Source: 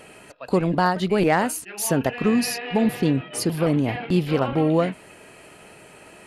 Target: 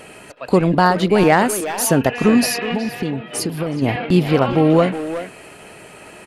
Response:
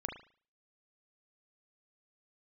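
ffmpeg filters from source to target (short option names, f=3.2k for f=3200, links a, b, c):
-filter_complex "[0:a]asplit=3[a][b][c];[a]afade=t=out:st=2.71:d=0.02[d];[b]acompressor=threshold=-26dB:ratio=6,afade=t=in:st=2.71:d=0.02,afade=t=out:st=3.81:d=0.02[e];[c]afade=t=in:st=3.81:d=0.02[f];[d][e][f]amix=inputs=3:normalize=0,asplit=2[g][h];[h]adelay=370,highpass=300,lowpass=3.4k,asoftclip=type=hard:threshold=-18.5dB,volume=-8dB[i];[g][i]amix=inputs=2:normalize=0,volume=6dB"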